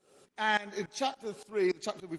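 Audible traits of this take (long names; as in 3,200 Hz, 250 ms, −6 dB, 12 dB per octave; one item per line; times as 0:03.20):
tremolo saw up 3.5 Hz, depth 90%
Opus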